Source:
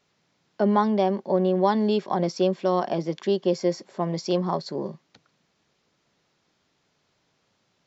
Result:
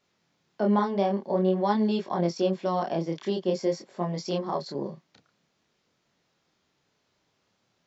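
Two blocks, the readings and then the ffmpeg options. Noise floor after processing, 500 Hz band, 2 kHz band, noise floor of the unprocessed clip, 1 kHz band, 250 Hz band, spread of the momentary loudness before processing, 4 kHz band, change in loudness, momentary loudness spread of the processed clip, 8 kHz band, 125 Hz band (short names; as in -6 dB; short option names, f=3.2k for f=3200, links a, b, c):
-74 dBFS, -3.5 dB, -3.0 dB, -71 dBFS, -3.0 dB, -2.5 dB, 8 LU, -3.0 dB, -3.0 dB, 8 LU, n/a, -2.0 dB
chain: -af "flanger=delay=22.5:depth=7.9:speed=0.49"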